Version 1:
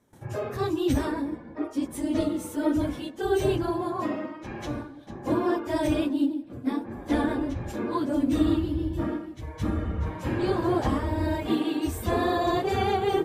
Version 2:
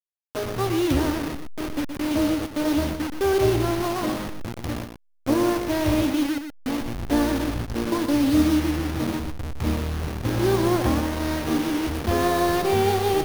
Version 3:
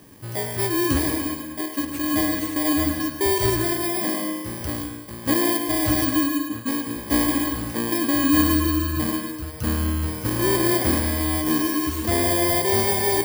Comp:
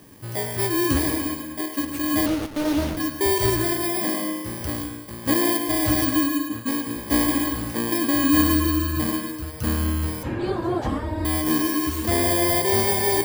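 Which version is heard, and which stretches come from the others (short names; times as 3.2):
3
2.26–2.97 from 2
10.23–11.25 from 1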